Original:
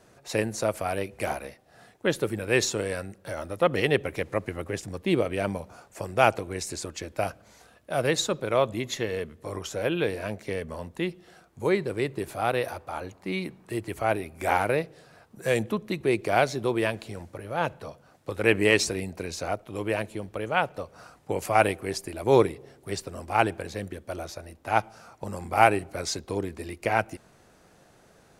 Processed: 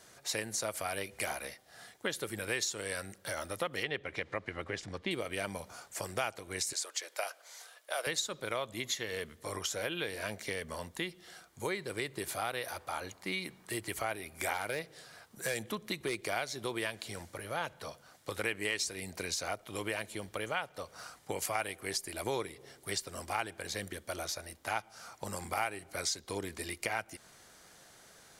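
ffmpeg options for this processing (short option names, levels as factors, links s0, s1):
-filter_complex "[0:a]asettb=1/sr,asplit=3[s0][s1][s2];[s0]atrim=end=3.834[s3];[s1]atrim=start=3.83:end=5.11,asetpts=PTS-STARTPTS,afade=t=in:d=0.004:c=qsin,afade=t=out:st=1.276:d=0.004:c=qsin,lowpass=3700[s4];[s2]atrim=start=5.106[s5];[s3][s4]acrossfade=d=0.004:c1=hsin:c2=qsin[s6];[s6][s5]acrossfade=d=0.004:c1=qsin:c2=hsin,asettb=1/sr,asplit=3[s7][s8][s9];[s7]atrim=end=6.734[s10];[s8]atrim=start=6.73:end=8.07,asetpts=PTS-STARTPTS,afade=t=in:d=0.004:c=qsin,afade=t=out:st=1.336:d=0.004:c=qsin,highpass=f=470:w=0.5412,highpass=f=470:w=1.3066[s11];[s9]atrim=start=8.066[s12];[s10][s11]acrossfade=d=0.004:c1=hsin:c2=qsin[s13];[s13][s12]acrossfade=d=0.004:c1=qsin:c2=hsin,asettb=1/sr,asplit=3[s14][s15][s16];[s14]atrim=end=14.534[s17];[s15]atrim=start=14.53:end=16.31,asetpts=PTS-STARTPTS,afade=t=in:d=0.004:c=qsin,afade=t=out:st=1.776:d=0.004:c=qsin,aeval=exprs='clip(val(0),-1,0.141)':c=same[s18];[s16]atrim=start=16.306[s19];[s17][s18]acrossfade=d=0.004:c1=hsin:c2=qsin[s20];[s20][s19]acrossfade=d=0.004:c1=qsin:c2=hsin,tiltshelf=f=1200:g=-7.5,bandreject=f=2600:w=11,acompressor=threshold=0.0224:ratio=4"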